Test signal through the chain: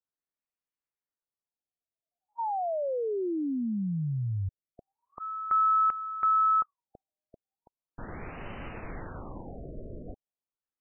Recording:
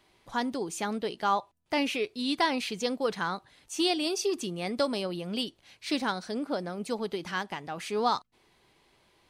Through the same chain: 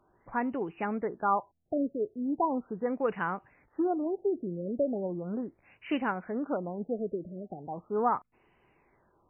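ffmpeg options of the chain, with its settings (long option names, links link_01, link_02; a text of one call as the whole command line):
ffmpeg -i in.wav -af "highshelf=frequency=4900:gain=-10,afftfilt=real='re*lt(b*sr/1024,660*pow(3100/660,0.5+0.5*sin(2*PI*0.38*pts/sr)))':imag='im*lt(b*sr/1024,660*pow(3100/660,0.5+0.5*sin(2*PI*0.38*pts/sr)))':win_size=1024:overlap=0.75" out.wav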